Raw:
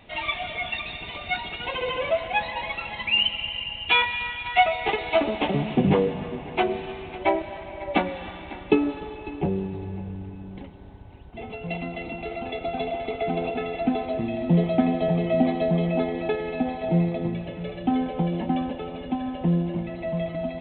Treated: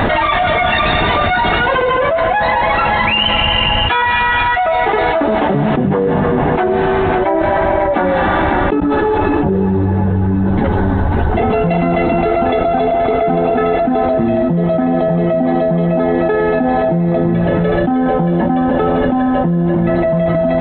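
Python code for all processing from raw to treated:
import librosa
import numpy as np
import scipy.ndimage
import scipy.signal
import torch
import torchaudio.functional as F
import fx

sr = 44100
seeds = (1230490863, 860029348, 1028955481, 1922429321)

y = fx.chain(x, sr, fx.over_compress(threshold_db=-34.0, ratio=-1.0),
    fx.ensemble(), at=(8.8, 11.4))
y = fx.high_shelf_res(y, sr, hz=2000.0, db=-6.5, q=3.0)
y = fx.hum_notches(y, sr, base_hz=60, count=3)
y = fx.env_flatten(y, sr, amount_pct=100)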